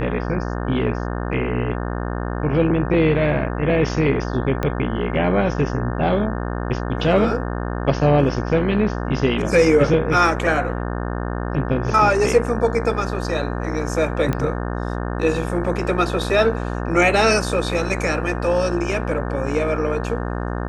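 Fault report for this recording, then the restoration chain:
mains buzz 60 Hz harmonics 30 −25 dBFS
0:04.63: click −10 dBFS
0:14.33: click −10 dBFS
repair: click removal
hum removal 60 Hz, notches 30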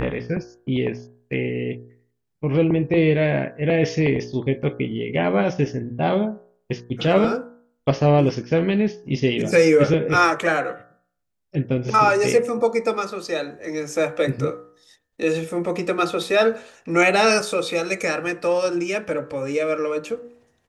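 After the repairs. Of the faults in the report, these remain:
0:04.63: click

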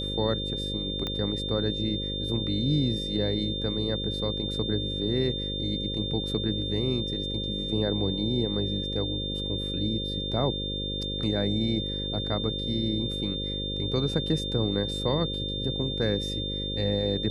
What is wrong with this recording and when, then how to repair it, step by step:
mains buzz 50 Hz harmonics 11 −34 dBFS
whistle 3,600 Hz −32 dBFS
0:01.07: click −18 dBFS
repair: click removal
hum removal 50 Hz, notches 11
notch filter 3,600 Hz, Q 30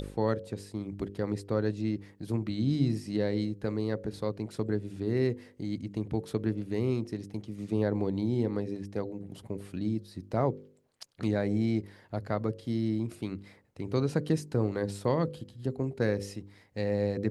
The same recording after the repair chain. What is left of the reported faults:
0:01.07: click

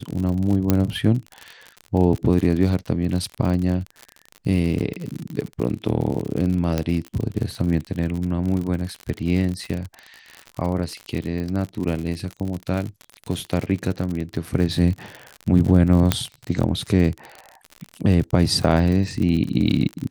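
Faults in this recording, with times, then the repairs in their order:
surface crackle 59 per second −26 dBFS
0:00.70: click −4 dBFS
0:06.78: click −9 dBFS
0:16.12: click −2 dBFS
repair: click removal

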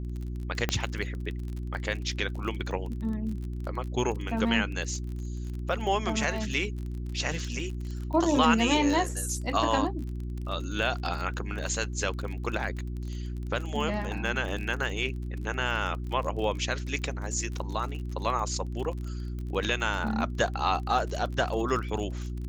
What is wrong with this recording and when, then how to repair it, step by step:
surface crackle 37 per second −35 dBFS
mains hum 60 Hz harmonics 6 −34 dBFS
0:00.69: click −11 dBFS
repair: click removal
hum removal 60 Hz, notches 6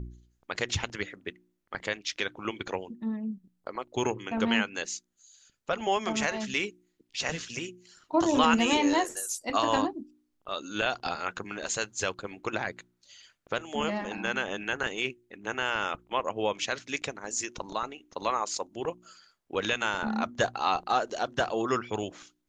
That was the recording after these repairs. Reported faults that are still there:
none of them is left

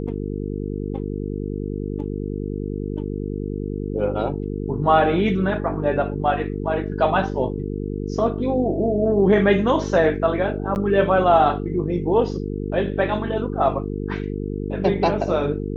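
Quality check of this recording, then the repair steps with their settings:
mains buzz 50 Hz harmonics 9 −27 dBFS
0:10.75–0:10.76: drop-out 9.9 ms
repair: hum removal 50 Hz, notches 9
repair the gap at 0:10.75, 9.9 ms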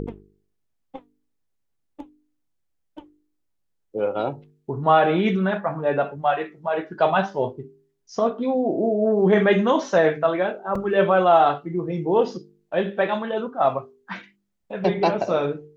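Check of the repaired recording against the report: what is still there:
none of them is left

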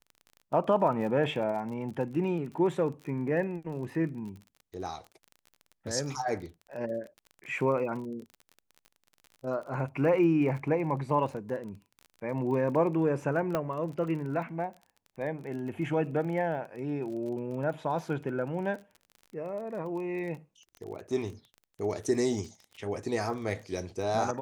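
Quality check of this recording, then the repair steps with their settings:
surface crackle 31 per second −39 dBFS
0:13.55: click −16 dBFS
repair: click removal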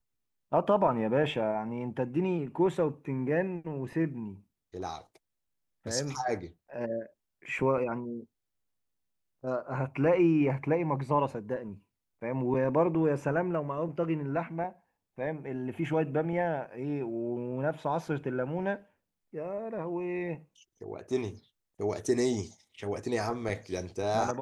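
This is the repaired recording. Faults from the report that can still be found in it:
0:13.55: click

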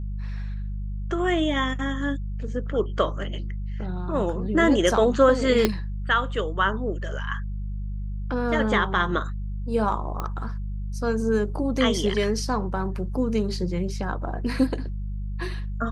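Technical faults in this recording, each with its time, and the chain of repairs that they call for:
mains hum 50 Hz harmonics 4 −30 dBFS
0:05.65: click −5 dBFS
0:10.20: click −16 dBFS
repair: click removal
hum removal 50 Hz, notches 4

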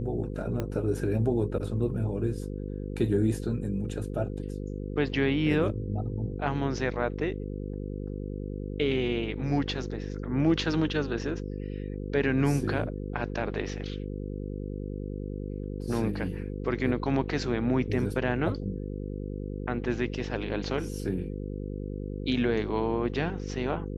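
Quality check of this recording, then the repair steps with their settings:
mains buzz 50 Hz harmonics 10 −35 dBFS
0:00.60: click −18 dBFS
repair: click removal
hum removal 50 Hz, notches 10

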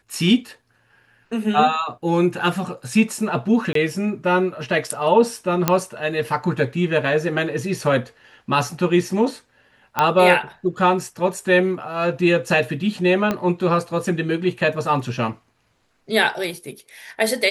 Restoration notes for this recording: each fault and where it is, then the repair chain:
0:03.73–0:03.75: drop-out 23 ms
0:05.68: click −1 dBFS
0:09.99: click −5 dBFS
0:13.31: click −9 dBFS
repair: click removal
repair the gap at 0:03.73, 23 ms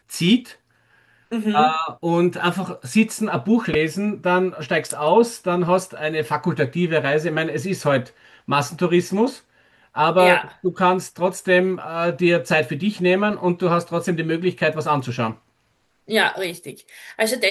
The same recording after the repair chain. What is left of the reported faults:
0:13.31: click

